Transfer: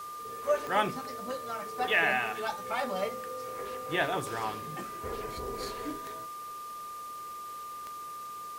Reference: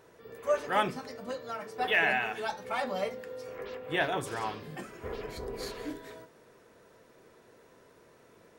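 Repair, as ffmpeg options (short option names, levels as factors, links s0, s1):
-af "adeclick=t=4,bandreject=f=1200:w=30,afwtdn=0.0025"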